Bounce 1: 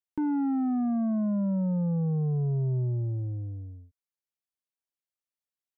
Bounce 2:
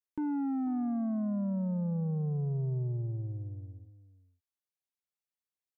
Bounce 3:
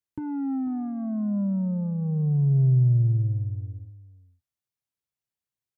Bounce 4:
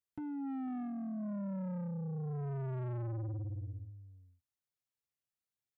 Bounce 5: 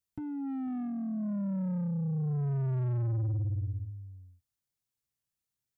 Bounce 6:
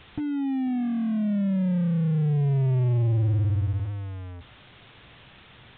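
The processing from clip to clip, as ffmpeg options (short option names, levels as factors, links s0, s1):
-af "aecho=1:1:493:0.158,volume=0.562"
-filter_complex "[0:a]equalizer=f=110:w=1.2:g=14,asplit=2[s0][s1];[s1]adelay=15,volume=0.282[s2];[s0][s2]amix=inputs=2:normalize=0"
-af "asoftclip=type=tanh:threshold=0.0251,volume=0.562"
-af "bass=f=250:g=9,treble=f=4000:g=5"
-af "aeval=exprs='val(0)+0.5*0.00841*sgn(val(0))':c=same,aresample=8000,aresample=44100,volume=2.24"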